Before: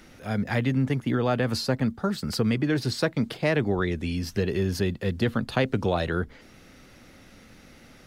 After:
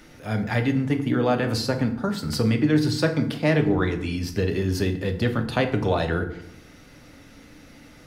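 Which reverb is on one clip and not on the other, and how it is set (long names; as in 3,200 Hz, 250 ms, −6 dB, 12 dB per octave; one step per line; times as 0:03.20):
feedback delay network reverb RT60 0.72 s, low-frequency decay 1.45×, high-frequency decay 0.65×, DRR 5 dB
level +1 dB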